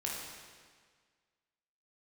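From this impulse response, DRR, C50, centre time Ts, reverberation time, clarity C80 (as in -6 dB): -4.5 dB, 0.5 dB, 91 ms, 1.7 s, 2.5 dB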